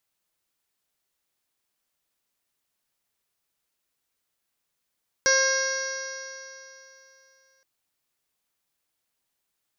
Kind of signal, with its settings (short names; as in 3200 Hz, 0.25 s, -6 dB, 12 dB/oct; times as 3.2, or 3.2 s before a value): stretched partials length 2.37 s, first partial 531 Hz, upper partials -8.5/2.5/-7.5/-17.5/-19/-14.5/-6.5/-5/1.5/-11 dB, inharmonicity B 0.0016, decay 3.00 s, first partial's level -23 dB